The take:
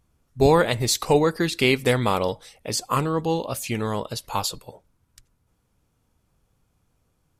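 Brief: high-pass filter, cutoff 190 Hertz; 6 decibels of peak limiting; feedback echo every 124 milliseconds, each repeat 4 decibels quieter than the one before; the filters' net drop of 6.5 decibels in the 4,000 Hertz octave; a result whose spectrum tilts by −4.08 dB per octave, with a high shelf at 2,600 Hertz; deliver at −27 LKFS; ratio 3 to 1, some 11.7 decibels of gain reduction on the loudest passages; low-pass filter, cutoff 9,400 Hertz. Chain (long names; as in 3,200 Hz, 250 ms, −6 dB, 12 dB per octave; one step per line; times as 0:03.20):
high-pass filter 190 Hz
low-pass filter 9,400 Hz
high-shelf EQ 2,600 Hz −3 dB
parametric band 4,000 Hz −5.5 dB
downward compressor 3 to 1, threshold −29 dBFS
brickwall limiter −20.5 dBFS
repeating echo 124 ms, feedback 63%, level −4 dB
level +5 dB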